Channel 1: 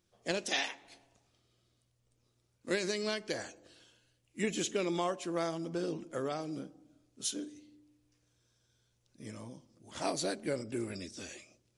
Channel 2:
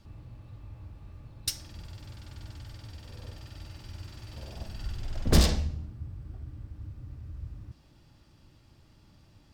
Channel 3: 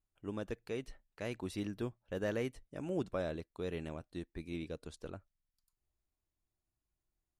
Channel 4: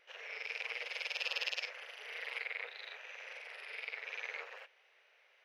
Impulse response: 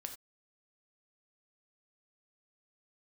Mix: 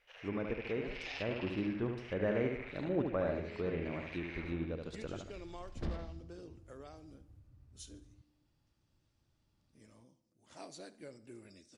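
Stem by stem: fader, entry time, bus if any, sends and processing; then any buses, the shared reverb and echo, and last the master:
-15.5 dB, 0.55 s, no send, echo send -18 dB, notch 3300 Hz, Q 26
-18.0 dB, 0.50 s, no send, no echo send, dry
+2.0 dB, 0.00 s, no send, echo send -5 dB, dry
-6.0 dB, 0.00 s, no send, echo send -3.5 dB, dry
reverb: off
echo: feedback echo 72 ms, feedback 46%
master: treble ducked by the level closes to 1900 Hz, closed at -33.5 dBFS

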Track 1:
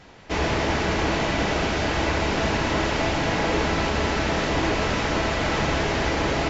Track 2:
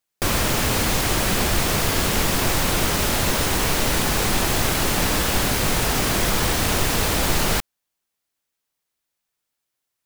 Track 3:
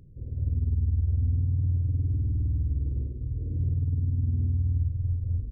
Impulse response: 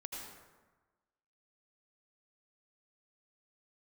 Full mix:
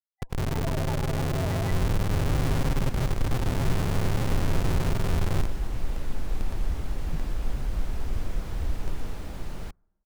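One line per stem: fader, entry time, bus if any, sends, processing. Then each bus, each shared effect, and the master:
-2.0 dB, 0.20 s, bus A, no send, no echo send, HPF 410 Hz
-8.0 dB, 1.50 s, bus A, send -17 dB, echo send -14 dB, tilt -2.5 dB/oct
-3.0 dB, 0.00 s, no bus, send -10 dB, no echo send, minimum comb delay 7.6 ms; AGC gain up to 5 dB; Schmitt trigger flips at -29.5 dBFS
bus A: 0.0 dB, loudest bins only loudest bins 2; limiter -22 dBFS, peak gain reduction 38 dB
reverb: on, RT60 1.2 s, pre-delay 72 ms
echo: echo 0.606 s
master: dry

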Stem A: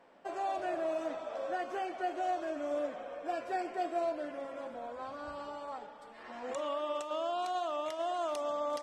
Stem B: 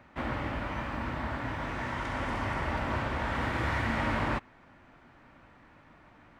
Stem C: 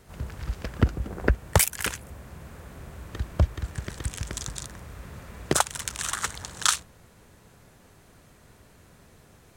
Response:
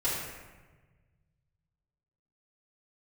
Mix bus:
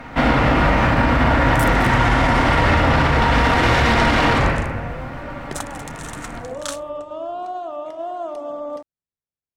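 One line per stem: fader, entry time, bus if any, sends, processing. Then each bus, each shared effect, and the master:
+1.0 dB, 0.00 s, send -17.5 dB, tilt shelf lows +9.5 dB, about 1100 Hz; notches 50/100/150/200/250/300 Hz
+2.0 dB, 0.00 s, send -3.5 dB, sine folder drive 10 dB, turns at -17.5 dBFS
-8.0 dB, 0.00 s, no send, gate -41 dBFS, range -39 dB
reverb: on, RT60 1.3 s, pre-delay 4 ms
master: limiter -7 dBFS, peak gain reduction 7.5 dB

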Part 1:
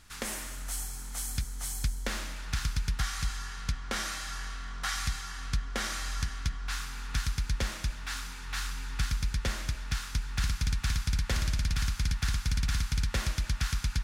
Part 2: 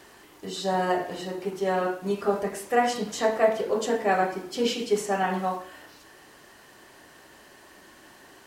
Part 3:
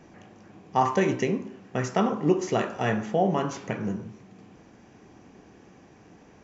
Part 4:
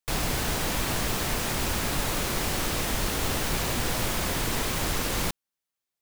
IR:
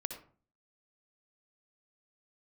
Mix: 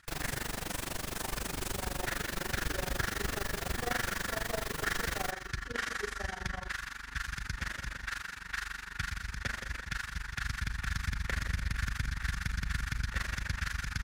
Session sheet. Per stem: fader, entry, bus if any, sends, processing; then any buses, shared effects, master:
-0.5 dB, 0.00 s, no send, echo send -8 dB, HPF 41 Hz; bell 1700 Hz +12 dB 0.97 oct; sustainer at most 66 dB/s
-10.0 dB, 1.10 s, no send, no echo send, dry
-16.5 dB, 0.45 s, no send, no echo send, dry
-2.5 dB, 0.00 s, no send, echo send -21.5 dB, dry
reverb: off
echo: feedback echo 0.173 s, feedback 51%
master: flange 0.4 Hz, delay 5.2 ms, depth 8.1 ms, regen +75%; AM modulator 24 Hz, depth 85%

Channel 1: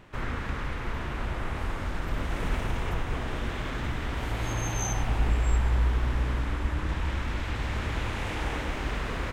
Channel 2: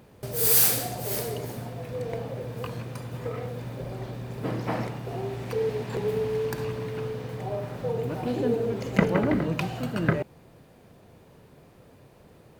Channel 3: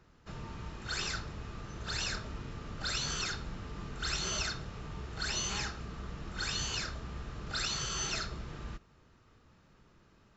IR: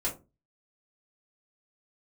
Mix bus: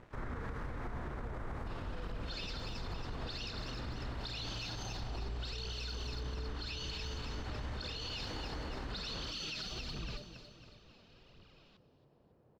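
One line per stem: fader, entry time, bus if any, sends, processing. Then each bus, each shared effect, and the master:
+1.5 dB, 0.00 s, bus A, no send, no echo send, bell 2800 Hz -10 dB 0.84 oct; limiter -22 dBFS, peak gain reduction 8.5 dB; crossover distortion -55 dBFS
-14.5 dB, 0.00 s, no bus, no send, echo send -8 dB, LPF 1200 Hz; compressor, threshold -32 dBFS, peak gain reduction 16.5 dB
-3.5 dB, 1.40 s, bus A, no send, echo send -18.5 dB, band shelf 3600 Hz +13.5 dB 1.3 oct; phaser 1.4 Hz, delay 4.8 ms, feedback 64%
bus A: 0.0 dB, high shelf 6200 Hz -11.5 dB; compressor, threshold -34 dBFS, peak gain reduction 12 dB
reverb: off
echo: feedback echo 0.275 s, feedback 45%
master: limiter -32.5 dBFS, peak gain reduction 9 dB

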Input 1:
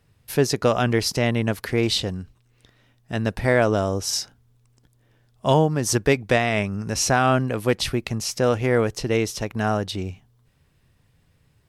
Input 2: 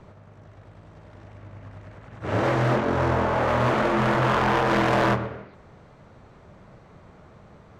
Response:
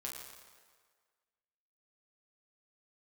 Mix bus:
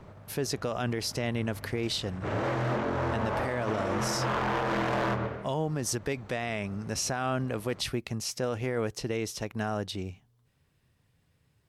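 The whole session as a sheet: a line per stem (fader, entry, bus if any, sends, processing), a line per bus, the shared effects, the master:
-6.5 dB, 0.00 s, no send, HPF 57 Hz 6 dB/oct
-1.0 dB, 0.00 s, no send, limiter -22 dBFS, peak gain reduction 7 dB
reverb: off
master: limiter -21 dBFS, peak gain reduction 9.5 dB

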